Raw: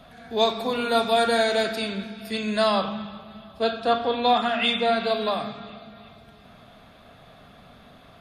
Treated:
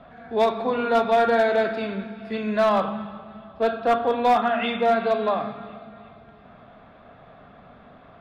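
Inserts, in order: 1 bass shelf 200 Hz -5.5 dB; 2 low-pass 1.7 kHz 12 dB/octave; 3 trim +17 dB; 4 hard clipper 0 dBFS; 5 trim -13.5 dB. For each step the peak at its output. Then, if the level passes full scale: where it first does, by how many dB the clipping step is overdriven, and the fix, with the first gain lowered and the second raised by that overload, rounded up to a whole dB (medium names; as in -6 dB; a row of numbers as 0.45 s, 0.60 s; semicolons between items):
-9.5 dBFS, -10.5 dBFS, +6.5 dBFS, 0.0 dBFS, -13.5 dBFS; step 3, 6.5 dB; step 3 +10 dB, step 5 -6.5 dB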